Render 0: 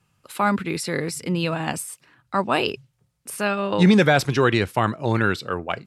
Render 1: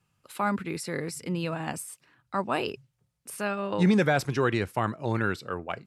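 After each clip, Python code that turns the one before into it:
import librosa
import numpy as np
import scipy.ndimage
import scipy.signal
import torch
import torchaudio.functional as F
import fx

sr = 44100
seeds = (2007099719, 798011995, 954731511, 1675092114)

y = fx.dynamic_eq(x, sr, hz=3500.0, q=1.5, threshold_db=-40.0, ratio=4.0, max_db=-5)
y = F.gain(torch.from_numpy(y), -6.5).numpy()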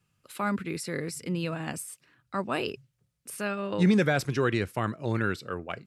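y = fx.peak_eq(x, sr, hz=860.0, db=-6.0, octaves=0.75)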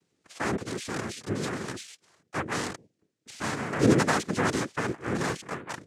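y = fx.noise_vocoder(x, sr, seeds[0], bands=3)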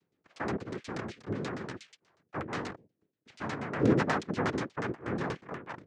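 y = fx.filter_lfo_lowpass(x, sr, shape='saw_down', hz=8.3, low_hz=610.0, high_hz=6000.0, q=0.83)
y = F.gain(torch.from_numpy(y), -4.0).numpy()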